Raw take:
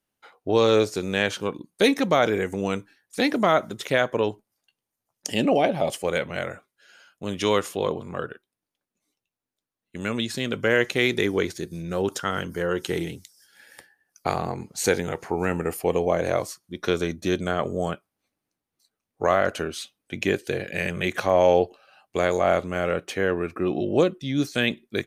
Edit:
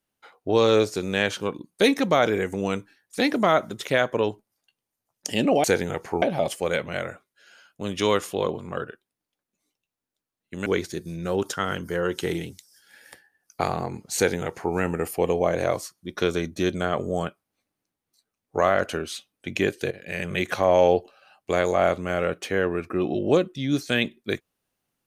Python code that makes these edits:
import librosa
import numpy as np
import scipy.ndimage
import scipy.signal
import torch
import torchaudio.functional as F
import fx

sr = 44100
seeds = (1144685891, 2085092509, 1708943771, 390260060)

y = fx.edit(x, sr, fx.cut(start_s=10.08, length_s=1.24),
    fx.duplicate(start_s=14.82, length_s=0.58, to_s=5.64),
    fx.fade_in_from(start_s=20.57, length_s=0.42, floor_db=-15.5), tone=tone)